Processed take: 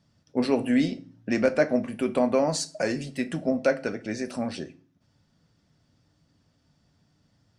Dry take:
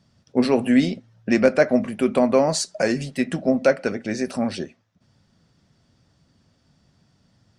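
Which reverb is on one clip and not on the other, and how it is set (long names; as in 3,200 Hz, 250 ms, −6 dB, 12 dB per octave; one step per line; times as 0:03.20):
feedback delay network reverb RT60 0.38 s, low-frequency decay 1.6×, high-frequency decay 0.9×, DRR 10.5 dB
level −5.5 dB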